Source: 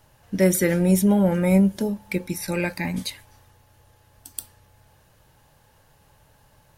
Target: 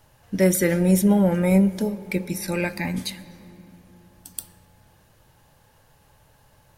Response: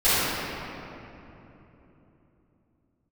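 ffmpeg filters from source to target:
-filter_complex "[0:a]asplit=2[s0][s1];[1:a]atrim=start_sample=2205[s2];[s1][s2]afir=irnorm=-1:irlink=0,volume=0.015[s3];[s0][s3]amix=inputs=2:normalize=0"

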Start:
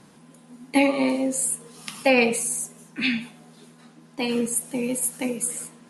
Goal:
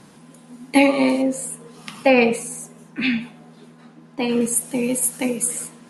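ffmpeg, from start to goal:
-filter_complex "[0:a]asettb=1/sr,asplit=3[s0][s1][s2];[s0]atrim=end=1.224[s3];[s1]atrim=start=1.22:end=4.41,asetpts=PTS-STARTPTS,afade=t=in:d=0.004:c=qsin,afade=t=out:st=3.186:d=0.004:c=qsin,highshelf=f=3800:g=-11.5[s4];[s2]atrim=start=4.406[s5];[s3][s4]acrossfade=d=0.004:c1=hsin:c2=qsin[s6];[s6][s5]acrossfade=d=0.004:c1=qsin:c2=hsin,volume=1.68"

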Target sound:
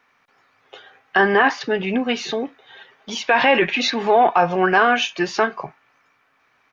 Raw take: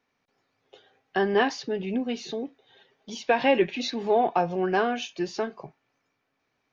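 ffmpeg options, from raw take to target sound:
-filter_complex "[0:a]asettb=1/sr,asplit=3[s0][s1][s2];[s0]atrim=end=1.204[s3];[s1]atrim=start=1.2:end=1.61,asetpts=PTS-STARTPTS,afade=t=in:d=0.004:c=qsin,afade=t=out:st=0.406:d=0.004:c=qsin,acrossover=split=2500[s4][s5];[s5]acompressor=threshold=0.00631:ratio=4:attack=1:release=60[s6];[s4][s6]amix=inputs=2:normalize=0[s7];[s2]atrim=start=1.606[s8];[s3][s7]acrossfade=d=0.004:c1=hsin:c2=qsin[s9];[s9][s8]acrossfade=d=0.004:c1=qsin:c2=hsin,firequalizer=gain_entry='entry(330,0);entry(1200,13);entry(4300,3)':delay=0.05:min_phase=1,alimiter=limit=0.251:level=0:latency=1:release=20,volume=2"

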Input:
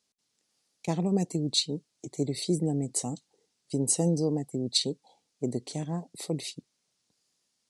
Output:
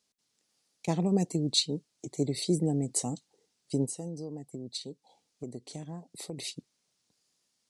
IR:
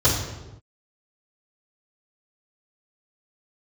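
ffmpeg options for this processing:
-filter_complex "[0:a]asplit=3[s0][s1][s2];[s0]afade=t=out:st=3.85:d=0.02[s3];[s1]acompressor=threshold=0.01:ratio=3,afade=t=in:st=3.85:d=0.02,afade=t=out:st=6.37:d=0.02[s4];[s2]afade=t=in:st=6.37:d=0.02[s5];[s3][s4][s5]amix=inputs=3:normalize=0"

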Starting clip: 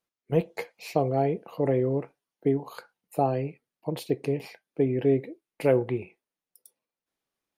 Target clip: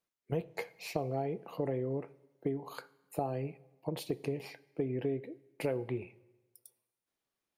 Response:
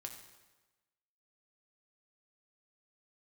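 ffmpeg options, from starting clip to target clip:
-filter_complex "[0:a]acompressor=threshold=0.0355:ratio=4,asplit=2[s0][s1];[1:a]atrim=start_sample=2205[s2];[s1][s2]afir=irnorm=-1:irlink=0,volume=0.376[s3];[s0][s3]amix=inputs=2:normalize=0,volume=0.631"

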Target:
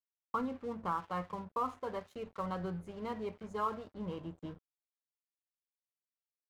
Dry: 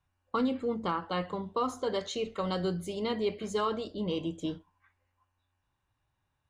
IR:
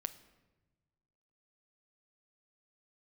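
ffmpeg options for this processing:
-af "firequalizer=gain_entry='entry(110,0);entry(310,-9);entry(1000,1);entry(3400,-18)':delay=0.05:min_phase=1,aeval=exprs='sgn(val(0))*max(abs(val(0))-0.00224,0)':c=same,volume=0.841"

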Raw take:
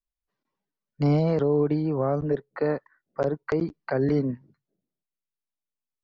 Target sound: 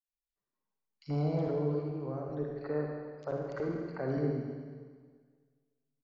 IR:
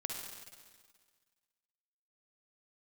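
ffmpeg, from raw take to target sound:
-filter_complex "[0:a]asettb=1/sr,asplit=3[s0][s1][s2];[s0]atrim=end=1.654[s3];[s1]atrim=start=1.65:end=2.32,asetpts=PTS-STARTPTS,afade=t=in:d=0.004:c=qsin,afade=t=out:st=0.666:d=0.004:c=qsin,acompressor=threshold=0.0562:ratio=6[s4];[s2]atrim=start=2.316[s5];[s3][s4]acrossfade=d=0.004:c1=hsin:c2=qsin[s6];[s6][s5]acrossfade=d=0.004:c1=qsin:c2=hsin,acrossover=split=2600[s7][s8];[s7]adelay=80[s9];[s9][s8]amix=inputs=2:normalize=0[s10];[1:a]atrim=start_sample=2205[s11];[s10][s11]afir=irnorm=-1:irlink=0,volume=0.355"

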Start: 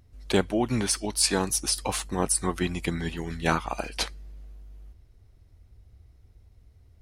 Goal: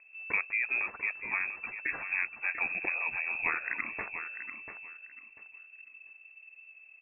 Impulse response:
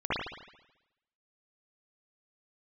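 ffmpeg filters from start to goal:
-filter_complex "[0:a]acompressor=threshold=0.0355:ratio=3,asplit=2[s0][s1];[s1]aecho=0:1:692|1384|2076:0.335|0.0703|0.0148[s2];[s0][s2]amix=inputs=2:normalize=0,lowpass=f=2300:t=q:w=0.5098,lowpass=f=2300:t=q:w=0.6013,lowpass=f=2300:t=q:w=0.9,lowpass=f=2300:t=q:w=2.563,afreqshift=-2700"

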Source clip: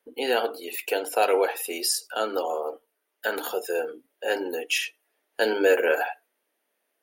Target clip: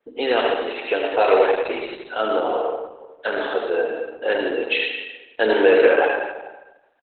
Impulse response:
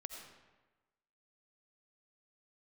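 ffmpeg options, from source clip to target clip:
-filter_complex "[0:a]asplit=2[s0][s1];[s1]asoftclip=type=tanh:threshold=0.1,volume=0.355[s2];[s0][s2]amix=inputs=2:normalize=0,asettb=1/sr,asplit=3[s3][s4][s5];[s3]atrim=end=2.534[s6];[s4]atrim=start=2.53:end=3.26,asetpts=PTS-STARTPTS,afade=t=in:d=0.004:c=qsin,afade=t=out:st=0.726:d=0.004:c=qsin,lowshelf=f=390:g=-3.5[s7];[s5]atrim=start=3.256[s8];[s6][s7]acrossfade=d=0.004:c1=hsin:c2=qsin[s9];[s9][s8]acrossfade=d=0.004:c1=qsin:c2=hsin,aecho=1:1:77|154|231:0.398|0.104|0.0269,aresample=32000,aresample=44100,adynamicequalizer=threshold=0.01:dfrequency=4400:dqfactor=1.3:tfrequency=4400:tqfactor=1.3:attack=5:release=100:ratio=0.375:range=2:mode=cutabove:tftype=bell[s10];[1:a]atrim=start_sample=2205[s11];[s10][s11]afir=irnorm=-1:irlink=0,volume=2.51" -ar 48000 -c:a libopus -b:a 8k

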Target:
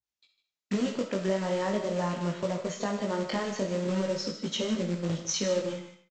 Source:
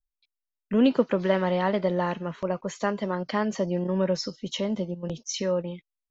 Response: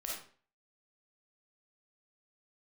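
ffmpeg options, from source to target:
-filter_complex "[0:a]highpass=f=85:w=0.5412,highpass=f=85:w=1.3066,equalizer=f=1200:t=o:w=1.9:g=-5,alimiter=limit=0.112:level=0:latency=1:release=477,acompressor=threshold=0.0251:ratio=3,aresample=16000,acrusher=bits=3:mode=log:mix=0:aa=0.000001,aresample=44100,flanger=delay=17.5:depth=3.4:speed=0.42,aecho=1:1:152:0.251,asplit=2[s0][s1];[1:a]atrim=start_sample=2205,lowshelf=f=460:g=-7.5[s2];[s1][s2]afir=irnorm=-1:irlink=0,volume=0.841[s3];[s0][s3]amix=inputs=2:normalize=0,adynamicequalizer=threshold=0.00316:dfrequency=2000:dqfactor=0.7:tfrequency=2000:tqfactor=0.7:attack=5:release=100:ratio=0.375:range=1.5:mode=cutabove:tftype=highshelf,volume=1.78"

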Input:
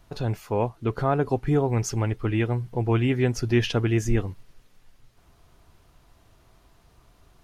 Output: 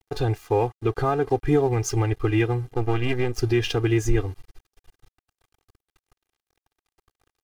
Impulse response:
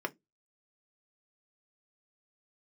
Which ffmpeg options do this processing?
-filter_complex "[0:a]asplit=3[s0][s1][s2];[s0]afade=t=out:st=2.72:d=0.02[s3];[s1]aeval=exprs='if(lt(val(0),0),0.251*val(0),val(0))':c=same,afade=t=in:st=2.72:d=0.02,afade=t=out:st=3.38:d=0.02[s4];[s2]afade=t=in:st=3.38:d=0.02[s5];[s3][s4][s5]amix=inputs=3:normalize=0,alimiter=limit=0.141:level=0:latency=1:release=275,aeval=exprs='sgn(val(0))*max(abs(val(0))-0.00355,0)':c=same,aecho=1:1:2.5:0.91,volume=1.58"

